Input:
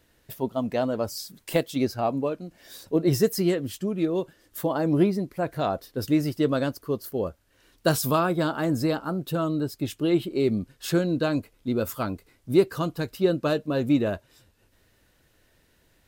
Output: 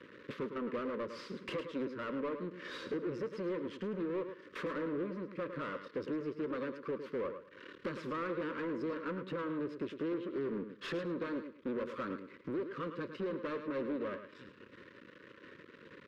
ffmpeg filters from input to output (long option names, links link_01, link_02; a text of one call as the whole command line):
ffmpeg -i in.wav -filter_complex "[0:a]lowshelf=frequency=420:gain=9.5,acompressor=threshold=-36dB:ratio=10,aeval=exprs='max(val(0),0)':channel_layout=same,highpass=210,lowpass=3100,asoftclip=type=tanh:threshold=-38.5dB,asuperstop=centerf=750:order=8:qfactor=1.8,asplit=2[link_01][link_02];[link_02]aecho=0:1:107|214|321:0.299|0.0597|0.0119[link_03];[link_01][link_03]amix=inputs=2:normalize=0,asplit=2[link_04][link_05];[link_05]highpass=frequency=720:poles=1,volume=14dB,asoftclip=type=tanh:threshold=-37dB[link_06];[link_04][link_06]amix=inputs=2:normalize=0,lowpass=frequency=1400:poles=1,volume=-6dB,volume=9.5dB" out.wav